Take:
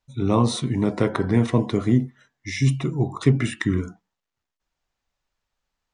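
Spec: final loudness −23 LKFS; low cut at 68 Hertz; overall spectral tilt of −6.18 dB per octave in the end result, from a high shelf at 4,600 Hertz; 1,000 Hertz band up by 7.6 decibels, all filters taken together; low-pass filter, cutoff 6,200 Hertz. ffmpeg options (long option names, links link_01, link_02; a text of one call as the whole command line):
ffmpeg -i in.wav -af "highpass=68,lowpass=6200,equalizer=frequency=1000:width_type=o:gain=8.5,highshelf=frequency=4600:gain=6,volume=-1.5dB" out.wav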